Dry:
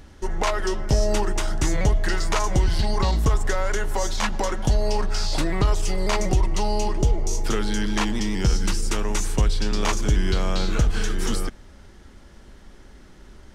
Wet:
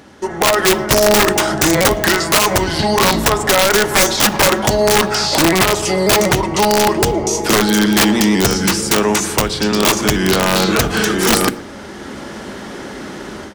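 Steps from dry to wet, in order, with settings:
mains-hum notches 60/120/180/240/300/360 Hz
in parallel at +1.5 dB: brickwall limiter −16.5 dBFS, peak gain reduction 7 dB
on the sum: high-pass filter 190 Hz 12 dB per octave
automatic gain control gain up to 14 dB
high-shelf EQ 2,300 Hz −4.5 dB
slap from a distant wall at 20 metres, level −21 dB
wrap-around overflow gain 9 dB
on a send at −17 dB: convolution reverb RT60 0.65 s, pre-delay 3 ms
on the sum: level +4 dB

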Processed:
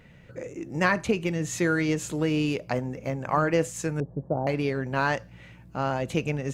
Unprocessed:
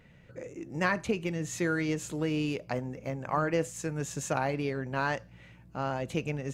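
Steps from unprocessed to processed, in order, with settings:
0:04.00–0:04.47: inverse Chebyshev low-pass filter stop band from 2,400 Hz, stop band 60 dB
level +5 dB

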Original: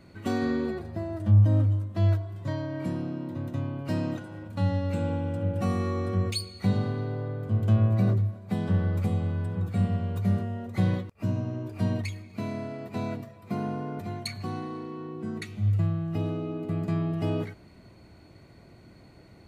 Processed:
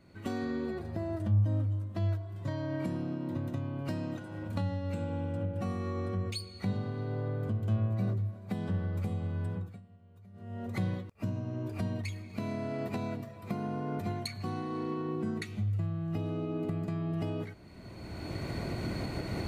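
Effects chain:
camcorder AGC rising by 23 dB per second
0:05.32–0:06.92: high-shelf EQ 6,000 Hz −4.5 dB
0:09.48–0:10.66: duck −22.5 dB, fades 0.33 s
level −8 dB

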